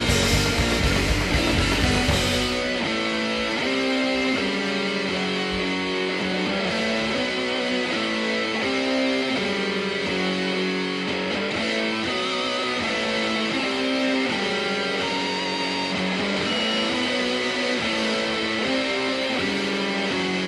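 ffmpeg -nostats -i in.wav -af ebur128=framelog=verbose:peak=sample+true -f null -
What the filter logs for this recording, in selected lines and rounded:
Integrated loudness:
  I:         -22.7 LUFS
  Threshold: -32.7 LUFS
Loudness range:
  LRA:         1.9 LU
  Threshold: -42.9 LUFS
  LRA low:   -23.6 LUFS
  LRA high:  -21.7 LUFS
Sample peak:
  Peak:       -7.4 dBFS
True peak:
  Peak:       -7.3 dBFS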